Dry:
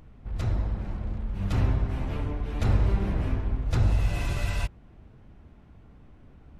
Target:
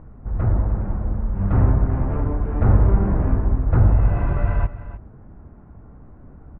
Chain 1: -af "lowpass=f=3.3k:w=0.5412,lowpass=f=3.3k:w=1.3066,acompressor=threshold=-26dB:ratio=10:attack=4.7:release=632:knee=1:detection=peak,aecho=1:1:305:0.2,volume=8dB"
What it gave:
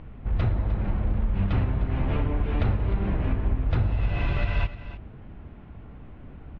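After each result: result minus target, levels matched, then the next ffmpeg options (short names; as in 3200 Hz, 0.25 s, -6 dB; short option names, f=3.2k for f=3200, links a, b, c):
compressor: peak gain reduction +12.5 dB; 2000 Hz band +8.0 dB
-af "lowpass=f=3.3k:w=0.5412,lowpass=f=3.3k:w=1.3066,aecho=1:1:305:0.2,volume=8dB"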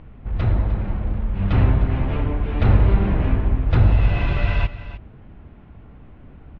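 2000 Hz band +7.0 dB
-af "lowpass=f=1.5k:w=0.5412,lowpass=f=1.5k:w=1.3066,aecho=1:1:305:0.2,volume=8dB"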